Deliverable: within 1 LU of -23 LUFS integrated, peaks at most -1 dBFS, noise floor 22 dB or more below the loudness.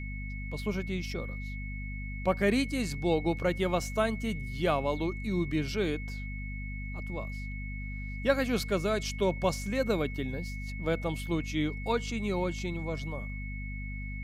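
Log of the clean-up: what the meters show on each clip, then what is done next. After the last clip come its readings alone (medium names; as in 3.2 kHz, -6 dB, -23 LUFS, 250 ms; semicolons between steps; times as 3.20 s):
hum 50 Hz; highest harmonic 250 Hz; hum level -35 dBFS; steady tone 2.2 kHz; tone level -43 dBFS; loudness -32.5 LUFS; peak level -12.0 dBFS; loudness target -23.0 LUFS
-> hum notches 50/100/150/200/250 Hz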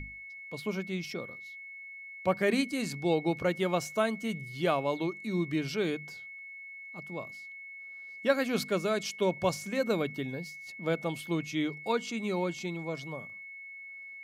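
hum not found; steady tone 2.2 kHz; tone level -43 dBFS
-> band-stop 2.2 kHz, Q 30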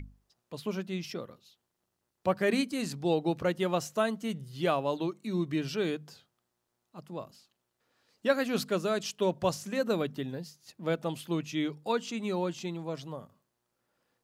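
steady tone not found; loudness -32.0 LUFS; peak level -12.0 dBFS; loudness target -23.0 LUFS
-> trim +9 dB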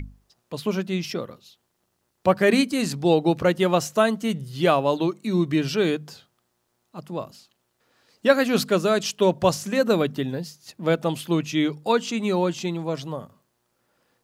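loudness -23.0 LUFS; peak level -3.0 dBFS; noise floor -73 dBFS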